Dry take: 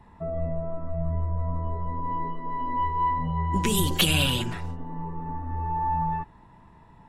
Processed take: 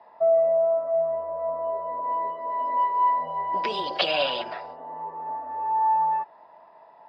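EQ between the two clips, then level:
high-pass with resonance 630 Hz, resonance Q 5.4
low-pass with resonance 4,900 Hz, resonance Q 15
high-frequency loss of the air 430 metres
+1.0 dB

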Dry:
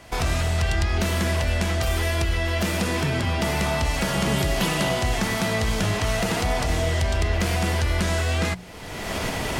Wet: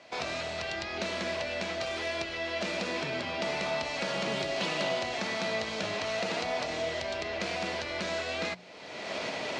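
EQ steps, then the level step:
loudspeaker in its box 240–6,500 Hz, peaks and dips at 590 Hz +7 dB, 2,400 Hz +5 dB, 4,100 Hz +6 dB
−8.5 dB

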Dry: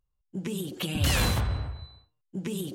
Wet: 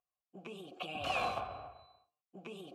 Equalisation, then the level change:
formant filter a
+6.0 dB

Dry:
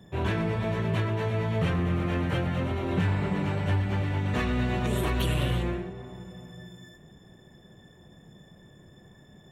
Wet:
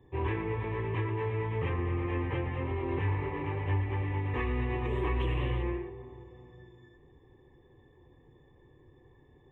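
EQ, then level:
dynamic equaliser 1,700 Hz, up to +5 dB, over −48 dBFS, Q 0.88
head-to-tape spacing loss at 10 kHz 32 dB
phaser with its sweep stopped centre 960 Hz, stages 8
0.0 dB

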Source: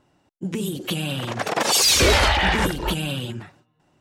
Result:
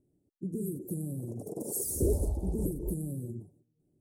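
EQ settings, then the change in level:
elliptic band-stop filter 430–9,500 Hz, stop band 80 dB
notch filter 510 Hz, Q 17
−7.0 dB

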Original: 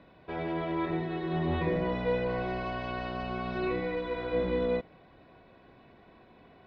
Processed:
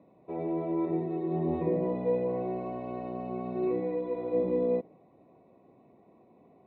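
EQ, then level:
high-pass filter 160 Hz 12 dB per octave
dynamic equaliser 360 Hz, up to +4 dB, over −42 dBFS, Q 0.8
moving average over 28 samples
0.0 dB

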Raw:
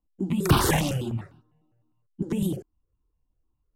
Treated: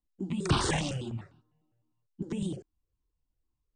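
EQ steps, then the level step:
linear-phase brick-wall low-pass 9,400 Hz
parametric band 4,200 Hz +4 dB 1.6 octaves
−7.0 dB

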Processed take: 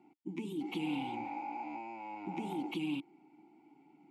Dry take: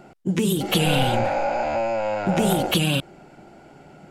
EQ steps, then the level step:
formant filter u
high-pass filter 86 Hz
high-shelf EQ 5,700 Hz +10.5 dB
−5.0 dB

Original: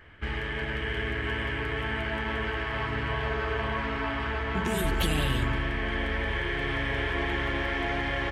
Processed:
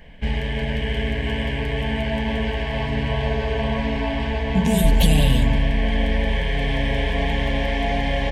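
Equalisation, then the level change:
low-shelf EQ 250 Hz +8.5 dB
phaser with its sweep stopped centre 350 Hz, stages 6
+8.5 dB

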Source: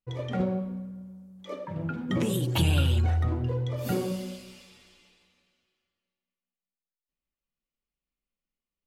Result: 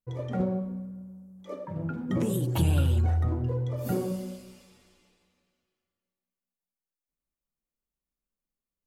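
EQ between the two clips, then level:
parametric band 3,100 Hz −9.5 dB 1.9 octaves
0.0 dB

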